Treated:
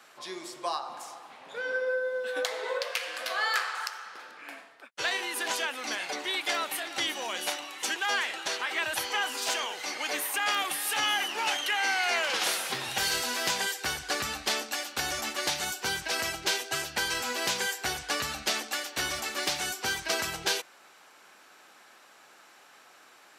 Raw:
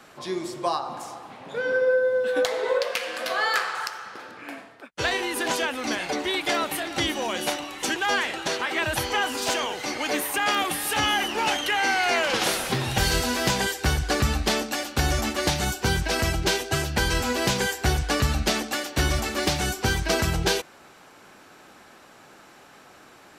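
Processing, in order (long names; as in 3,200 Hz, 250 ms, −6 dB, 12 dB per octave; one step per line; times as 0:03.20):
high-pass filter 1,000 Hz 6 dB per octave
level −2.5 dB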